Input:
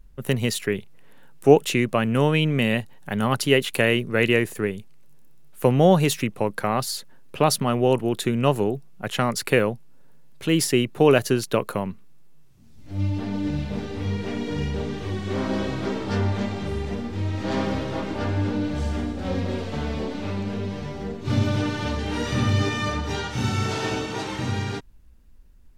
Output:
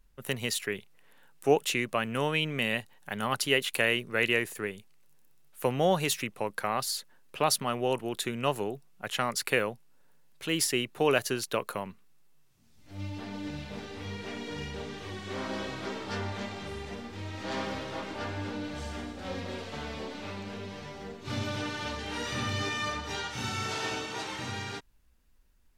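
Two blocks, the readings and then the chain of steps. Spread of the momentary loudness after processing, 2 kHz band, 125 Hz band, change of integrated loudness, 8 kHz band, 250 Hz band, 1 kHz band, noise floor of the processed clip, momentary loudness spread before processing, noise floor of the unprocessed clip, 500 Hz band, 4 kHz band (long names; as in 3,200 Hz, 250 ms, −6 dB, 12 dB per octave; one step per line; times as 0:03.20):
13 LU, −3.5 dB, −13.5 dB, −8.0 dB, −3.0 dB, −12.0 dB, −5.5 dB, −60 dBFS, 10 LU, −46 dBFS, −9.0 dB, −3.0 dB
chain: low-shelf EQ 490 Hz −11.5 dB
level −3 dB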